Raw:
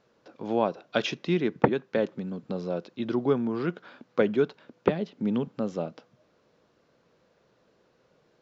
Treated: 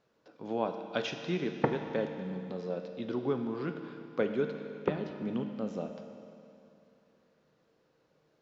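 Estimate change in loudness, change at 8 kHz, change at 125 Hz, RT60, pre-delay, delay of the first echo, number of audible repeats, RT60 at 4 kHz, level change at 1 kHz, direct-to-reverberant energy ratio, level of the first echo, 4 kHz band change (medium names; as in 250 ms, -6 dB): -6.0 dB, no reading, -5.5 dB, 2.8 s, 6 ms, no echo, no echo, 2.7 s, -6.0 dB, 5.0 dB, no echo, -6.0 dB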